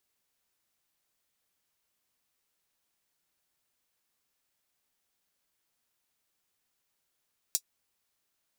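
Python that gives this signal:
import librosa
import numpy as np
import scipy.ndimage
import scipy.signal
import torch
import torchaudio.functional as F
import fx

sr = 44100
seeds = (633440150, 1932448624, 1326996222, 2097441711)

y = fx.drum_hat(sr, length_s=0.24, from_hz=5400.0, decay_s=0.07)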